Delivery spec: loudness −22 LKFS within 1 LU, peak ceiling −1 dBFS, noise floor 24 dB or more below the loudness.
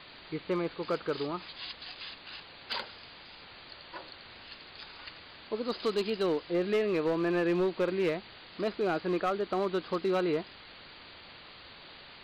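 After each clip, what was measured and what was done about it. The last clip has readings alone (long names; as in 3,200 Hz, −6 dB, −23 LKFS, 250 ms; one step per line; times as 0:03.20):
share of clipped samples 1.1%; peaks flattened at −23.0 dBFS; background noise floor −51 dBFS; target noise floor −56 dBFS; integrated loudness −32.0 LKFS; sample peak −23.0 dBFS; target loudness −22.0 LKFS
→ clipped peaks rebuilt −23 dBFS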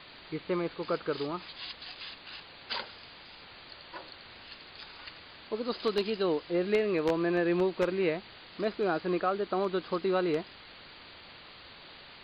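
share of clipped samples 0.0%; background noise floor −51 dBFS; target noise floor −56 dBFS
→ noise reduction from a noise print 6 dB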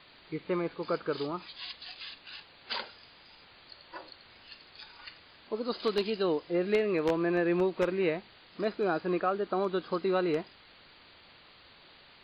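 background noise floor −57 dBFS; integrated loudness −31.5 LKFS; sample peak −14.0 dBFS; target loudness −22.0 LKFS
→ level +9.5 dB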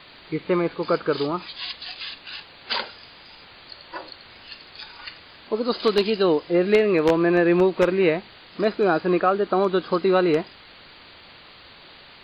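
integrated loudness −22.0 LKFS; sample peak −4.5 dBFS; background noise floor −48 dBFS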